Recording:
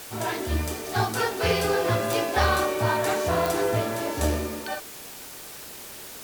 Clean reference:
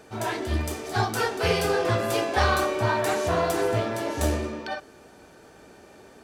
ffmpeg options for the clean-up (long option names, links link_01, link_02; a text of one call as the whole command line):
ffmpeg -i in.wav -af "adeclick=threshold=4,afwtdn=0.0089" out.wav